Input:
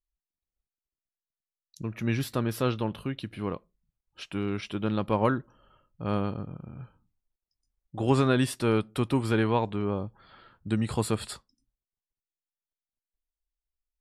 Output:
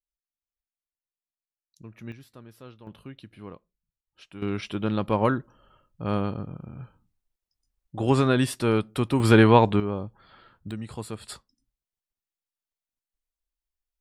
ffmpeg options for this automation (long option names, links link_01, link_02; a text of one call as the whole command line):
ffmpeg -i in.wav -af "asetnsamples=nb_out_samples=441:pad=0,asendcmd='2.12 volume volume -19dB;2.87 volume volume -9.5dB;4.42 volume volume 2dB;9.2 volume volume 9.5dB;9.8 volume volume 0dB;10.71 volume volume -8dB;11.28 volume volume -0.5dB',volume=-10.5dB" out.wav